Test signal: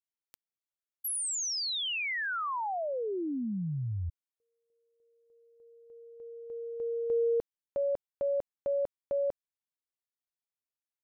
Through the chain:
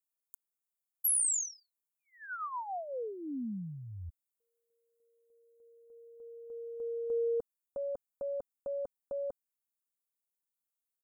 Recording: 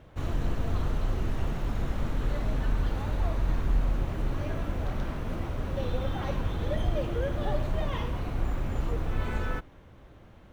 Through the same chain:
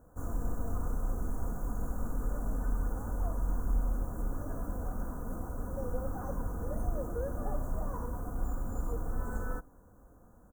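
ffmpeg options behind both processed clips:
-af "asuperstop=centerf=3200:order=12:qfactor=0.63,aecho=1:1:4.1:0.44,crystalizer=i=2:c=0,volume=0.473"

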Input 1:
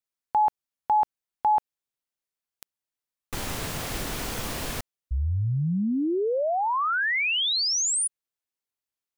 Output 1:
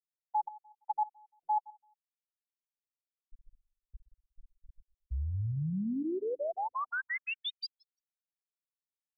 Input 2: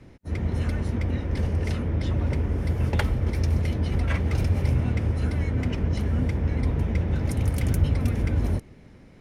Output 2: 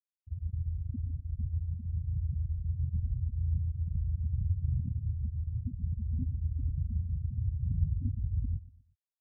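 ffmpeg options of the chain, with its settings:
-filter_complex "[0:a]afftfilt=real='re*gte(hypot(re,im),0.355)':imag='im*gte(hypot(re,im),0.355)':win_size=1024:overlap=0.75,asplit=2[s0][s1];[s1]adelay=120,lowpass=f=1600:p=1,volume=0.112,asplit=2[s2][s3];[s3]adelay=120,lowpass=f=1600:p=1,volume=0.38,asplit=2[s4][s5];[s5]adelay=120,lowpass=f=1600:p=1,volume=0.38[s6];[s0][s2][s4][s6]amix=inputs=4:normalize=0,afftfilt=real='re*lt(b*sr/1024,290*pow(5800/290,0.5+0.5*sin(2*PI*5.9*pts/sr)))':imag='im*lt(b*sr/1024,290*pow(5800/290,0.5+0.5*sin(2*PI*5.9*pts/sr)))':win_size=1024:overlap=0.75,volume=0.422"

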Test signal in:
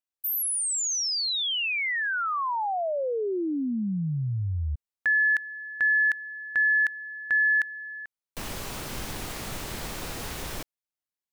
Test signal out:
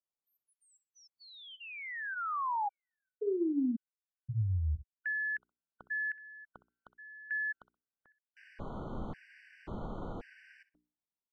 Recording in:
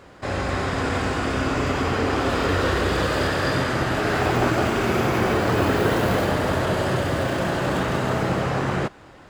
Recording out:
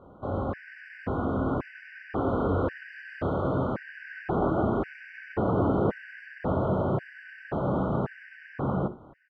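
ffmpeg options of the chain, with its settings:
-af "equalizer=f=200:t=o:w=0.58:g=4.5,bandreject=f=60:t=h:w=6,bandreject=f=120:t=h:w=6,bandreject=f=180:t=h:w=6,bandreject=f=240:t=h:w=6,bandreject=f=300:t=h:w=6,bandreject=f=360:t=h:w=6,bandreject=f=420:t=h:w=6,aecho=1:1:63|126:0.15|0.0299,asoftclip=type=tanh:threshold=0.355,lowpass=1100,afftfilt=real='re*gt(sin(2*PI*0.93*pts/sr)*(1-2*mod(floor(b*sr/1024/1500),2)),0)':imag='im*gt(sin(2*PI*0.93*pts/sr)*(1-2*mod(floor(b*sr/1024/1500),2)),0)':win_size=1024:overlap=0.75,volume=0.708"

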